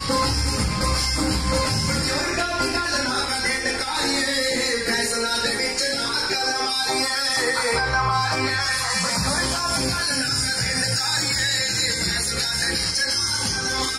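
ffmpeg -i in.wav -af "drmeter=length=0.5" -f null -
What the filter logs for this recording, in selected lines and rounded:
Channel 1: DR: 9.3
Overall DR: 9.3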